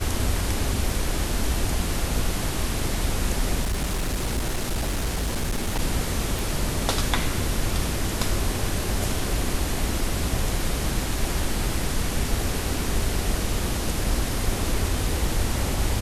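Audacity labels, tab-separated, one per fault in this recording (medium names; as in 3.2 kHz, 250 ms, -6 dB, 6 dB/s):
3.630000	5.800000	clipped -21 dBFS
6.390000	6.390000	pop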